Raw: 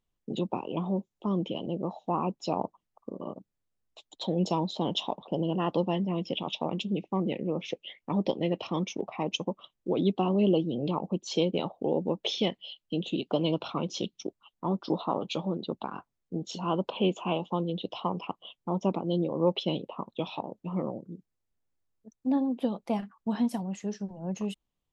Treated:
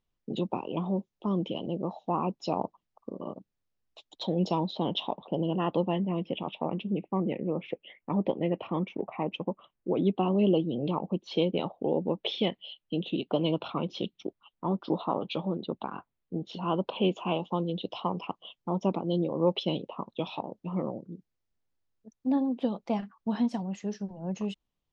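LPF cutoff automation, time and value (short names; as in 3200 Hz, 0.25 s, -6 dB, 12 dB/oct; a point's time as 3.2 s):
LPF 24 dB/oct
4.3 s 6100 Hz
4.89 s 3900 Hz
5.53 s 3900 Hz
6.58 s 2500 Hz
9.88 s 2500 Hz
10.38 s 3800 Hz
16.59 s 3800 Hz
17.35 s 6300 Hz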